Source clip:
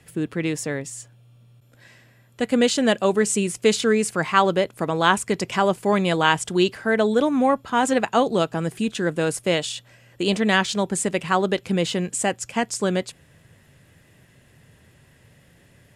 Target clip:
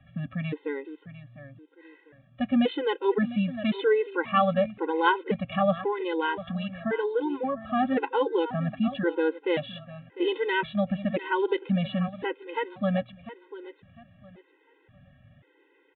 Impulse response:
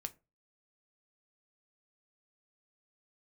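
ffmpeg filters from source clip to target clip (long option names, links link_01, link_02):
-filter_complex "[0:a]aemphasis=mode=reproduction:type=75kf,asettb=1/sr,asplit=3[link_01][link_02][link_03];[link_01]atrim=end=5.714[link_04];[link_02]atrim=start=5.71:end=7.69,asetpts=PTS-STARTPTS,afade=type=in:duration=0.004:curve=qsin,afade=type=out:start_time=1.976:duration=0.004:curve=qsin,acompressor=threshold=-20dB:ratio=6[link_05];[link_03]atrim=start=7.686[link_06];[link_04][link_05]acrossfade=duration=0.004:curve1=hsin:curve2=qsin[link_07];[link_07][link_06]acrossfade=duration=0.004:curve1=qsin:curve2=hsin,asplit=2[link_08][link_09];[link_09]aecho=0:1:701|1402|2103:0.2|0.0539|0.0145[link_10];[link_08][link_10]amix=inputs=2:normalize=0,aresample=8000,aresample=44100,afftfilt=real='re*gt(sin(2*PI*0.94*pts/sr)*(1-2*mod(floor(b*sr/1024/270),2)),0)':imag='im*gt(sin(2*PI*0.94*pts/sr)*(1-2*mod(floor(b*sr/1024/270),2)),0)':win_size=1024:overlap=0.75,volume=-1dB"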